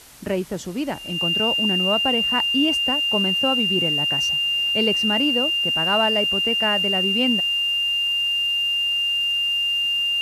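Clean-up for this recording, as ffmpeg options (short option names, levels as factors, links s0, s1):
-af "bandreject=f=2800:w=30,afwtdn=0.0056"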